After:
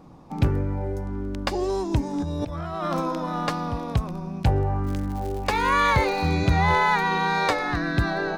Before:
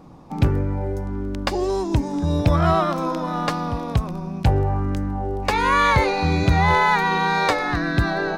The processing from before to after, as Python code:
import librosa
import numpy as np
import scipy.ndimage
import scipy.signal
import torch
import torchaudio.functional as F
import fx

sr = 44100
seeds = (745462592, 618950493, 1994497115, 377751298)

y = fx.over_compress(x, sr, threshold_db=-24.0, ratio=-1.0, at=(2.18, 3.0), fade=0.02)
y = fx.dmg_crackle(y, sr, seeds[0], per_s=190.0, level_db=-29.0, at=(4.83, 6.34), fade=0.02)
y = y * librosa.db_to_amplitude(-3.0)